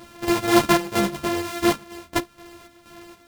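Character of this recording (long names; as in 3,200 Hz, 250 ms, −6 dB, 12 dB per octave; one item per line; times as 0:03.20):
a buzz of ramps at a fixed pitch in blocks of 128 samples
chopped level 2.1 Hz, depth 60%, duty 60%
a shimmering, thickened sound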